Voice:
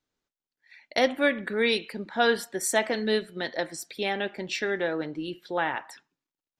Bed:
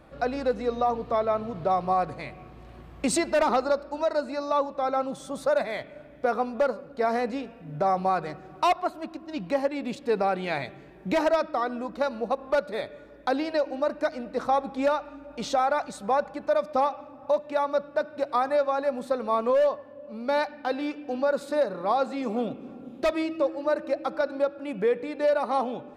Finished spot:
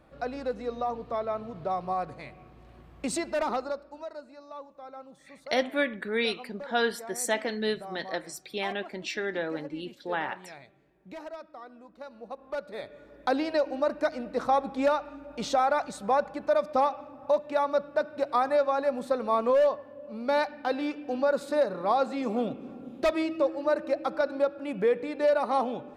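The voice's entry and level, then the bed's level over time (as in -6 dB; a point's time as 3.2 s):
4.55 s, -3.5 dB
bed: 3.52 s -6 dB
4.35 s -18 dB
11.94 s -18 dB
13.27 s -0.5 dB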